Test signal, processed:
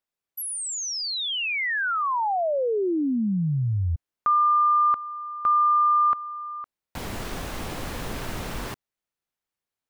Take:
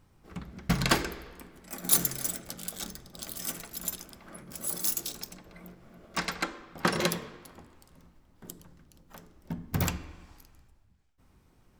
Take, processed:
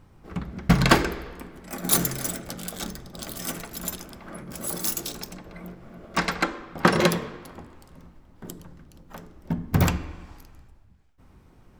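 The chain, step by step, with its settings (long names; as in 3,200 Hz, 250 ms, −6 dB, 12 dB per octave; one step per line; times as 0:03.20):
high-shelf EQ 3,000 Hz −8 dB
level +9 dB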